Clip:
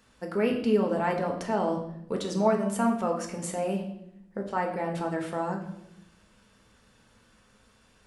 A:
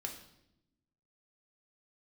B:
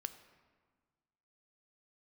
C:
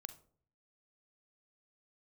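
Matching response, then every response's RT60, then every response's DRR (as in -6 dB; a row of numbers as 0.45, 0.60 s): A; 0.80, 1.5, 0.55 s; 1.0, 10.0, 10.5 dB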